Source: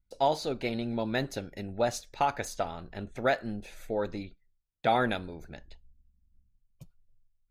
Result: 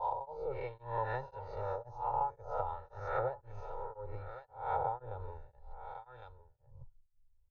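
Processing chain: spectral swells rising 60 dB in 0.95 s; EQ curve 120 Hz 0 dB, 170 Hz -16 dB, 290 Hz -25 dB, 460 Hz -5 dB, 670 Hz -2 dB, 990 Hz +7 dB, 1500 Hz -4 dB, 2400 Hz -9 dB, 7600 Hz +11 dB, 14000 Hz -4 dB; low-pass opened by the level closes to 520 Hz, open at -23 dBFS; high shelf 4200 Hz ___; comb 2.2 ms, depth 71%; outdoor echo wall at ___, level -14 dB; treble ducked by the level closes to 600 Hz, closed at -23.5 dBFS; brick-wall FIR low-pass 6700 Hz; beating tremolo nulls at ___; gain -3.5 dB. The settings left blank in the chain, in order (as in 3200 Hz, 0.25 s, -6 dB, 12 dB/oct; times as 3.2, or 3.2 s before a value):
-3 dB, 190 m, 1.9 Hz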